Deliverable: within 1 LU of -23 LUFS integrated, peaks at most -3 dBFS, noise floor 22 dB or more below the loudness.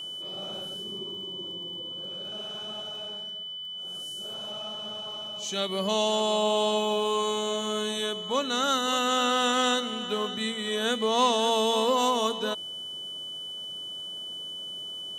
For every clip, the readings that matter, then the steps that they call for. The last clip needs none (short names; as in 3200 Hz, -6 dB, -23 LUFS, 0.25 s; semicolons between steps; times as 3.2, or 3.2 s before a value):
ticks 23/s; steady tone 3000 Hz; tone level -35 dBFS; loudness -28.5 LUFS; peak -11.0 dBFS; loudness target -23.0 LUFS
-> de-click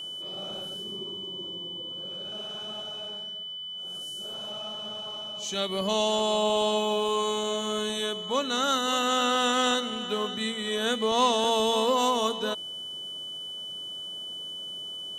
ticks 0/s; steady tone 3000 Hz; tone level -35 dBFS
-> notch 3000 Hz, Q 30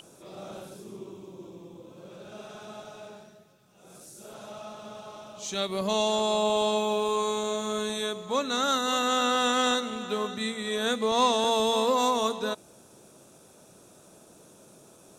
steady tone none; loudness -26.5 LUFS; peak -11.5 dBFS; loudness target -23.0 LUFS
-> gain +3.5 dB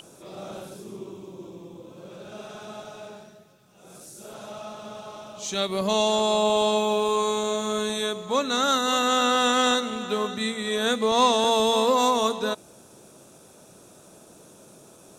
loudness -23.0 LUFS; peak -8.0 dBFS; noise floor -51 dBFS